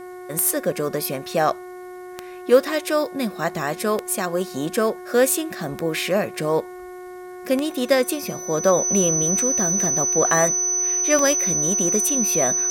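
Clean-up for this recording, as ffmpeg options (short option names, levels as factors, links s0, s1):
-af "adeclick=t=4,bandreject=f=363.5:t=h:w=4,bandreject=f=727:t=h:w=4,bandreject=f=1090.5:t=h:w=4,bandreject=f=1454:t=h:w=4,bandreject=f=1817.5:t=h:w=4,bandreject=f=2181:t=h:w=4,bandreject=f=6000:w=30,agate=range=0.0891:threshold=0.0355"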